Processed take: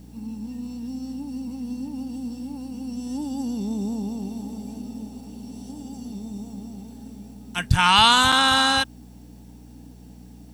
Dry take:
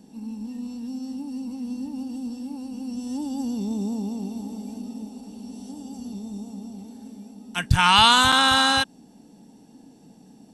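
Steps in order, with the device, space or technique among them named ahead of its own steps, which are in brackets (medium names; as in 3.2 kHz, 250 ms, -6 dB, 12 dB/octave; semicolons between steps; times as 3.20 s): video cassette with head-switching buzz (mains buzz 60 Hz, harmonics 5, -46 dBFS -4 dB/octave; white noise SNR 38 dB)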